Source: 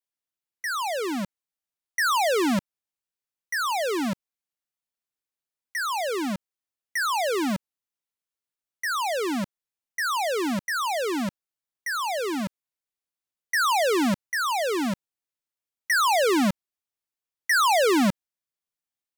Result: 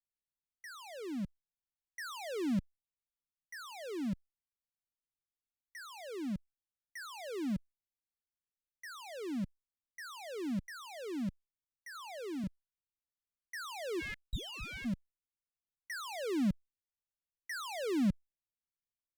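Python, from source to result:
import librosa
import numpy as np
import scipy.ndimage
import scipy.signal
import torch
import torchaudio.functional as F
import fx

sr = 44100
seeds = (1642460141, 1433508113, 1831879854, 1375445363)

y = fx.high_shelf(x, sr, hz=3300.0, db=-9.5)
y = fx.ring_mod(y, sr, carrier_hz=1900.0, at=(13.99, 14.84), fade=0.02)
y = fx.tone_stack(y, sr, knobs='10-0-1')
y = fx.band_squash(y, sr, depth_pct=40, at=(11.95, 12.44))
y = F.gain(torch.from_numpy(y), 9.5).numpy()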